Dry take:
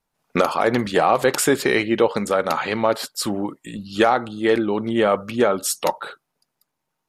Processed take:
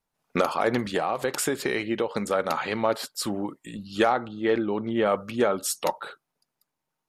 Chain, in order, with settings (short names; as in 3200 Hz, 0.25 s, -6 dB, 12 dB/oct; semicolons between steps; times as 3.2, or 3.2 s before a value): 0.77–2.15 compressor, threshold -17 dBFS, peak gain reduction 6.5 dB; 4.12–5.06 air absorption 140 m; gain -5 dB